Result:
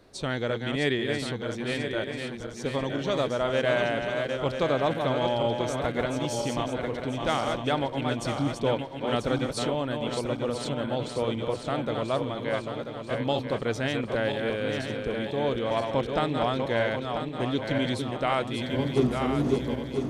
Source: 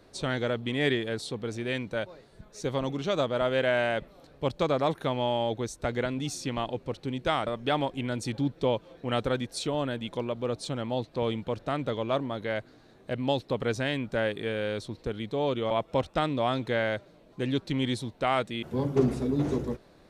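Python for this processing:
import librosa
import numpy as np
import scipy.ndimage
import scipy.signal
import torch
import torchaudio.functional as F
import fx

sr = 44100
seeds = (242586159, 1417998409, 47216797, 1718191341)

y = fx.reverse_delay_fb(x, sr, ms=494, feedback_pct=68, wet_db=-5)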